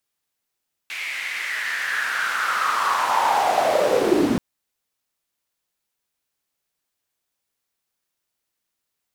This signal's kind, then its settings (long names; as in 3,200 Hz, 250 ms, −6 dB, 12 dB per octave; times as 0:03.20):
filter sweep on noise white, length 3.48 s bandpass, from 2,300 Hz, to 220 Hz, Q 5.6, linear, gain ramp +21 dB